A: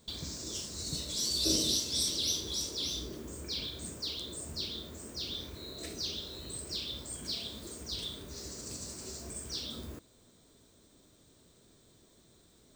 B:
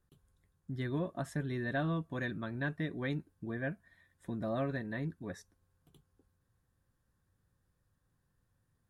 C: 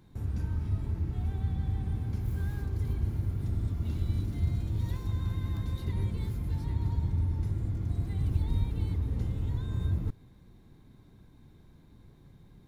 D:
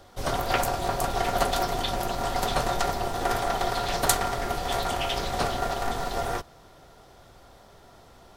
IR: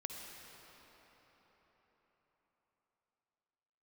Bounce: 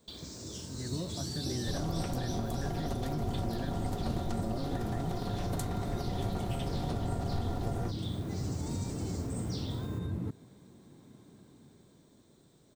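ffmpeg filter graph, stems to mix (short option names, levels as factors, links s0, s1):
-filter_complex "[0:a]volume=0.841[s0];[1:a]volume=0.251[s1];[2:a]highpass=180,adelay=200,volume=0.316[s2];[3:a]lowshelf=f=430:g=12,adelay=1500,volume=0.708[s3];[s0][s3]amix=inputs=2:normalize=0,lowshelf=f=160:g=-9.5,acompressor=threshold=0.0126:ratio=2.5,volume=1[s4];[s1][s2]amix=inputs=2:normalize=0,dynaudnorm=f=110:g=21:m=3.98,alimiter=level_in=2.24:limit=0.0631:level=0:latency=1,volume=0.447,volume=1[s5];[s4][s5]amix=inputs=2:normalize=0,tiltshelf=f=970:g=4,acrossover=split=340|3000[s6][s7][s8];[s7]acompressor=threshold=0.0112:ratio=6[s9];[s6][s9][s8]amix=inputs=3:normalize=0"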